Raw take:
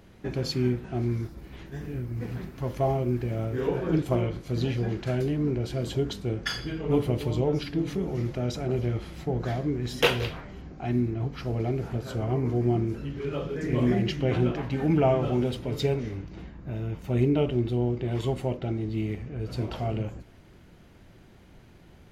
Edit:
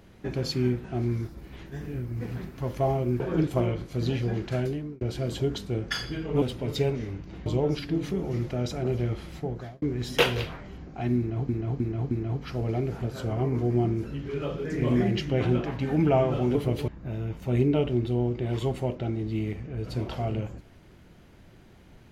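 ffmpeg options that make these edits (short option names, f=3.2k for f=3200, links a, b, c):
-filter_complex "[0:a]asplit=11[a][b][c][d][e][f][g][h][i][j][k];[a]atrim=end=3.202[l];[b]atrim=start=3.748:end=5.56,asetpts=PTS-STARTPTS,afade=t=out:st=1.392:d=0.42[m];[c]atrim=start=5.56:end=6.972,asetpts=PTS-STARTPTS,afade=t=in:d=0.004:c=hsin[n];[d]atrim=start=15.458:end=16.502[o];[e]atrim=start=7.298:end=9.66,asetpts=PTS-STARTPTS,afade=t=out:st=1.852:d=0.51[p];[f]atrim=start=9.66:end=11.332,asetpts=PTS-STARTPTS,afade=t=in:d=0.004:c=hsin[q];[g]atrim=start=11.018:end=11.332[r];[h]atrim=start=11.018:end=11.332[s];[i]atrim=start=11.018:end=15.462[t];[j]atrim=start=6.968:end=7.302[u];[k]atrim=start=16.498[v];[m][n]concat=n=2:v=0:a=1[w];[l][w]acrossfade=d=0.004:c1=hsin:c2=hsin[x];[x][o]acrossfade=d=0.004:c1=hsin:c2=hsin[y];[p][q]concat=n=2:v=0:a=1[z];[y][z]acrossfade=d=0.004:c1=hsin:c2=hsin[aa];[aa][r]acrossfade=d=0.004:c1=hsin:c2=hsin[ab];[ab][s]acrossfade=d=0.004:c1=hsin:c2=hsin[ac];[ac][t]acrossfade=d=0.004:c1=hsin:c2=hsin[ad];[ad][u]acrossfade=d=0.004:c1=hsin:c2=hsin[ae];[ae][v]acrossfade=d=0.004:c1=hsin:c2=hsin"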